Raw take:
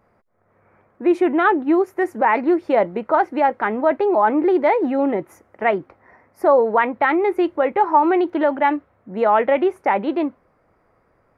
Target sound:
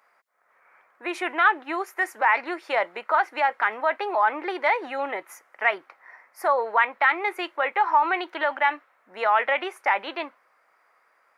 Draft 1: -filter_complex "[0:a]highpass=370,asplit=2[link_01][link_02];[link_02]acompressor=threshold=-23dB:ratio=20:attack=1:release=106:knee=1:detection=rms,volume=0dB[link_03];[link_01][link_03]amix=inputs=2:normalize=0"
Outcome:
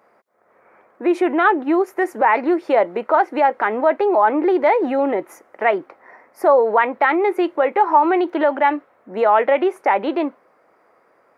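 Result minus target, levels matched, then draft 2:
500 Hz band +5.5 dB
-filter_complex "[0:a]highpass=1300,asplit=2[link_01][link_02];[link_02]acompressor=threshold=-23dB:ratio=20:attack=1:release=106:knee=1:detection=rms,volume=0dB[link_03];[link_01][link_03]amix=inputs=2:normalize=0"

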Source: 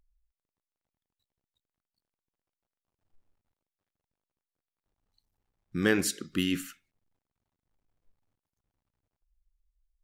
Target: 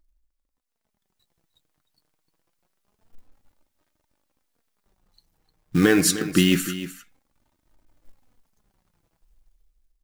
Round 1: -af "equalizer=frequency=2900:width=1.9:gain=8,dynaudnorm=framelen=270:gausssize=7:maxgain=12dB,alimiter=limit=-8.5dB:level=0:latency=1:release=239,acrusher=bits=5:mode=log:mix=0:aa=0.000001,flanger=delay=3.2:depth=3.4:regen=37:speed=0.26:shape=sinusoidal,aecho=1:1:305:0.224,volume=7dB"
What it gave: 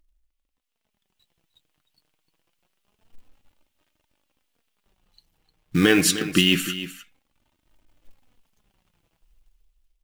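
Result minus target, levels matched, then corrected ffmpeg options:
4,000 Hz band +4.5 dB
-af "equalizer=frequency=2900:width=1.9:gain=-2,dynaudnorm=framelen=270:gausssize=7:maxgain=12dB,alimiter=limit=-8.5dB:level=0:latency=1:release=239,acrusher=bits=5:mode=log:mix=0:aa=0.000001,flanger=delay=3.2:depth=3.4:regen=37:speed=0.26:shape=sinusoidal,aecho=1:1:305:0.224,volume=7dB"

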